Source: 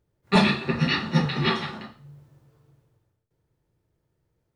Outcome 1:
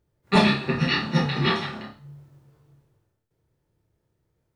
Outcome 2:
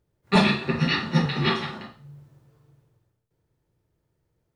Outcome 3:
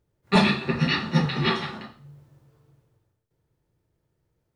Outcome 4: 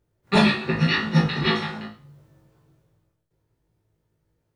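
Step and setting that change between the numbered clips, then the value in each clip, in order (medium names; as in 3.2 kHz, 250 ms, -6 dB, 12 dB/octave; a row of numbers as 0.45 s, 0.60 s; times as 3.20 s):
flutter echo, walls apart: 4.9 m, 8.4 m, 12.4 m, 3.2 m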